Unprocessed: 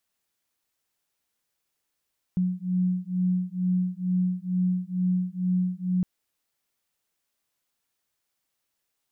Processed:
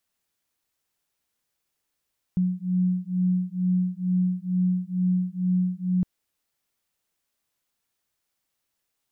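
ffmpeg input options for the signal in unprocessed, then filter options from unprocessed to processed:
-f lavfi -i "aevalsrc='0.0501*(sin(2*PI*181*t)+sin(2*PI*183.2*t))':d=3.66:s=44100"
-af "lowshelf=f=190:g=3"

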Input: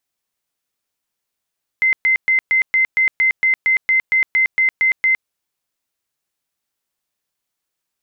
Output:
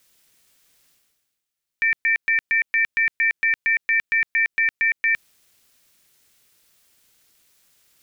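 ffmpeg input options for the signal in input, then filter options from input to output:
-f lavfi -i "aevalsrc='0.266*sin(2*PI*2070*mod(t,0.23))*lt(mod(t,0.23),226/2070)':d=3.45:s=44100"
-af "equalizer=f=730:w=1.6:g=-14.5,areverse,acompressor=mode=upward:threshold=-39dB:ratio=2.5,areverse,aeval=exprs='val(0)*sin(2*PI*260*n/s)':c=same"

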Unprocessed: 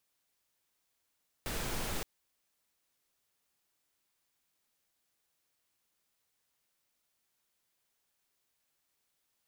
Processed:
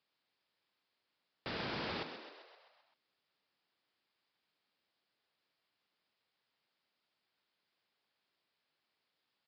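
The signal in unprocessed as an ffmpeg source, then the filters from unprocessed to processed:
-f lavfi -i "anoisesrc=c=pink:a=0.0767:d=0.57:r=44100:seed=1"
-filter_complex "[0:a]highpass=130,asplit=2[a][b];[b]asplit=7[c][d][e][f][g][h][i];[c]adelay=130,afreqshift=69,volume=-9dB[j];[d]adelay=260,afreqshift=138,volume=-13.4dB[k];[e]adelay=390,afreqshift=207,volume=-17.9dB[l];[f]adelay=520,afreqshift=276,volume=-22.3dB[m];[g]adelay=650,afreqshift=345,volume=-26.7dB[n];[h]adelay=780,afreqshift=414,volume=-31.2dB[o];[i]adelay=910,afreqshift=483,volume=-35.6dB[p];[j][k][l][m][n][o][p]amix=inputs=7:normalize=0[q];[a][q]amix=inputs=2:normalize=0,aresample=11025,aresample=44100"

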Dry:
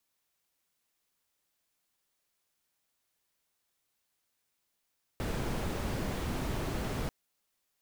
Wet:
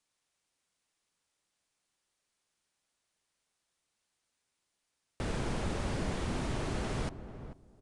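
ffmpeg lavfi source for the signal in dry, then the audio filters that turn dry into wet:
-f lavfi -i "anoisesrc=c=brown:a=0.0989:d=1.89:r=44100:seed=1"
-filter_complex "[0:a]asplit=2[a][b];[b]adelay=440,lowpass=f=820:p=1,volume=-10dB,asplit=2[c][d];[d]adelay=440,lowpass=f=820:p=1,volume=0.2,asplit=2[e][f];[f]adelay=440,lowpass=f=820:p=1,volume=0.2[g];[a][c][e][g]amix=inputs=4:normalize=0,aresample=22050,aresample=44100"

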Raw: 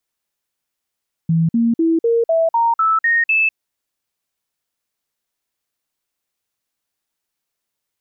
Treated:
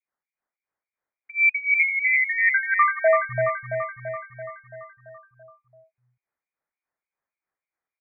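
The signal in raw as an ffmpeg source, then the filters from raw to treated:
-f lavfi -i "aevalsrc='0.251*clip(min(mod(t,0.25),0.2-mod(t,0.25))/0.005,0,1)*sin(2*PI*164*pow(2,floor(t/0.25)/2)*mod(t,0.25))':d=2.25:s=44100"
-filter_complex "[0:a]acrossover=split=440[a][b];[a]aeval=exprs='val(0)*(1-1/2+1/2*cos(2*PI*3.4*n/s))':c=same[c];[b]aeval=exprs='val(0)*(1-1/2-1/2*cos(2*PI*3.4*n/s))':c=same[d];[c][d]amix=inputs=2:normalize=0,asplit=2[e][f];[f]aecho=0:1:336|672|1008|1344|1680|2016|2352|2688:0.531|0.319|0.191|0.115|0.0688|0.0413|0.0248|0.0149[g];[e][g]amix=inputs=2:normalize=0,lowpass=f=2.1k:t=q:w=0.5098,lowpass=f=2.1k:t=q:w=0.6013,lowpass=f=2.1k:t=q:w=0.9,lowpass=f=2.1k:t=q:w=2.563,afreqshift=-2500"

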